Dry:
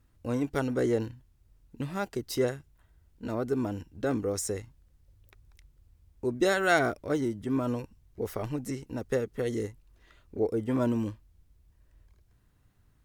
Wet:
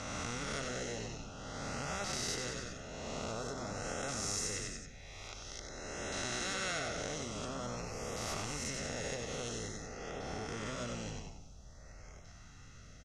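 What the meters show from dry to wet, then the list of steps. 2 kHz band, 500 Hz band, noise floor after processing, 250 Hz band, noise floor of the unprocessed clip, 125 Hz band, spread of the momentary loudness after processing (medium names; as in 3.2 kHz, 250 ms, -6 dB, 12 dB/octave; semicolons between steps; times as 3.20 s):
-6.5 dB, -11.5 dB, -54 dBFS, -13.0 dB, -65 dBFS, -7.5 dB, 19 LU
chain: reverse spectral sustain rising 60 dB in 1.24 s; treble shelf 3.5 kHz -9 dB; frequency-shifting echo 94 ms, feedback 37%, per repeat -67 Hz, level -7.5 dB; LFO notch saw up 0.49 Hz 410–4700 Hz; four-pole ladder low-pass 6.5 kHz, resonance 75%; compression 4:1, threshold -45 dBFS, peak gain reduction 11.5 dB; comb 1.5 ms, depth 68%; de-hum 65.02 Hz, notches 27; spectrum-flattening compressor 2:1; trim +11 dB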